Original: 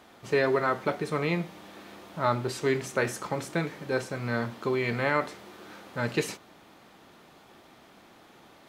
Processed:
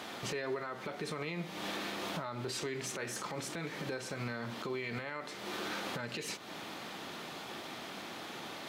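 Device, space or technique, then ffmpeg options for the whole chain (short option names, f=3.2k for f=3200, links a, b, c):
broadcast voice chain: -af "highpass=110,deesser=0.75,acompressor=threshold=-41dB:ratio=4,equalizer=f=3.8k:t=o:w=2.2:g=5.5,alimiter=level_in=13.5dB:limit=-24dB:level=0:latency=1:release=99,volume=-13.5dB,volume=8.5dB"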